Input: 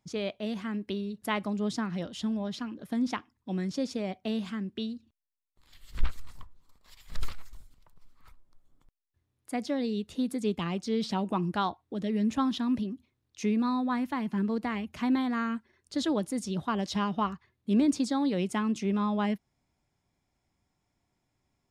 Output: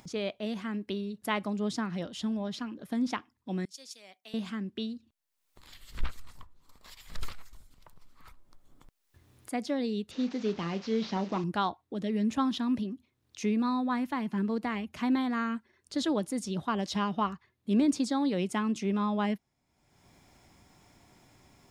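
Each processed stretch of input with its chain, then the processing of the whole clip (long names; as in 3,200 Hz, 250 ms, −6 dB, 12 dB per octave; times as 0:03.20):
0:03.65–0:04.34: first difference + multiband upward and downward expander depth 100%
0:10.11–0:11.44: linear delta modulator 32 kbit/s, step −43 dBFS + low-shelf EQ 78 Hz −10 dB + double-tracking delay 36 ms −13 dB
whole clip: low-shelf EQ 110 Hz −5.5 dB; upward compression, threshold −43 dBFS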